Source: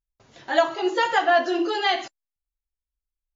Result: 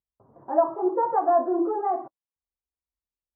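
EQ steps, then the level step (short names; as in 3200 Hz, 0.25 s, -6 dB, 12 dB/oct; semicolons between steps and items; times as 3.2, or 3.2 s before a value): HPF 76 Hz 12 dB/oct; elliptic low-pass 1100 Hz, stop band 70 dB; 0.0 dB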